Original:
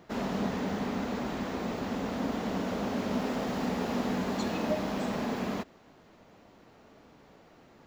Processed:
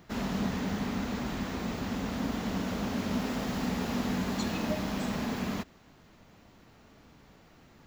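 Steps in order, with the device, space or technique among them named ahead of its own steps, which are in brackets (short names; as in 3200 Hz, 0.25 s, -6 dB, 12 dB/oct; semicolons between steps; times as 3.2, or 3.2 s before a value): smiley-face EQ (low shelf 120 Hz +6.5 dB; bell 520 Hz -6.5 dB 2 oct; high shelf 8000 Hz +5 dB); gain +1.5 dB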